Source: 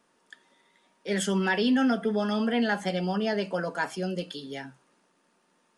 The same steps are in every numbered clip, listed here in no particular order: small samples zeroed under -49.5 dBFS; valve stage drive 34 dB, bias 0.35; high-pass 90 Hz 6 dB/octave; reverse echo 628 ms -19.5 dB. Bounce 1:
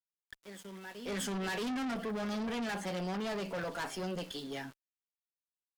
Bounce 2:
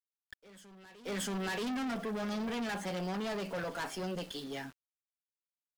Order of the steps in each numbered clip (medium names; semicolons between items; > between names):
reverse echo > small samples zeroed > high-pass > valve stage; high-pass > valve stage > small samples zeroed > reverse echo